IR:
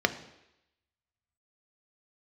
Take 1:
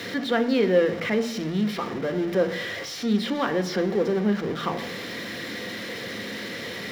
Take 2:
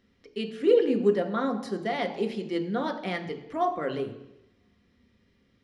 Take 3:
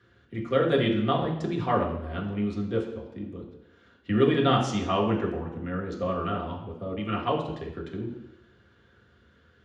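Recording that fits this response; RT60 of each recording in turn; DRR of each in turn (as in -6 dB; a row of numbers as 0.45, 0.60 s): 1; 0.85, 0.85, 0.85 s; 8.5, 4.5, -2.0 dB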